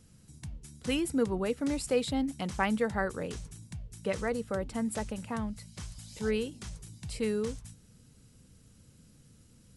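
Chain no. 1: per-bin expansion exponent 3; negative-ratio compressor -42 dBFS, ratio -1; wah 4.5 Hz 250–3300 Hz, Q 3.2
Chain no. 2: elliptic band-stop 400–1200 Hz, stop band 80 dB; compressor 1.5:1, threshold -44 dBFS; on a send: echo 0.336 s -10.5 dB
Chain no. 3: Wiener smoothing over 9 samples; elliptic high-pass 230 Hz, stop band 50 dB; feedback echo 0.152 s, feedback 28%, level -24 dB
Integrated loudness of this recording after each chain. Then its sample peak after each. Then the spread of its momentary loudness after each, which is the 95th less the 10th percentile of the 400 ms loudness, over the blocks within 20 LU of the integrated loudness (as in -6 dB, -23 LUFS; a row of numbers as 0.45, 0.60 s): -53.5, -41.0, -34.0 LUFS; -31.0, -22.0, -14.5 dBFS; 17, 21, 12 LU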